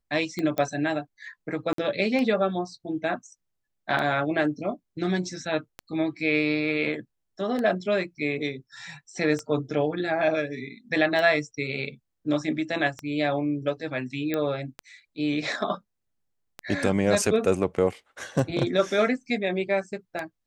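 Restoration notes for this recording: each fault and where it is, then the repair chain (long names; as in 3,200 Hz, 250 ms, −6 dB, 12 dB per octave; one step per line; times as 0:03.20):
scratch tick 33 1/3 rpm −17 dBFS
0:00.58: click −14 dBFS
0:01.73–0:01.78: drop-out 53 ms
0:14.34: click −14 dBFS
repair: click removal
repair the gap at 0:01.73, 53 ms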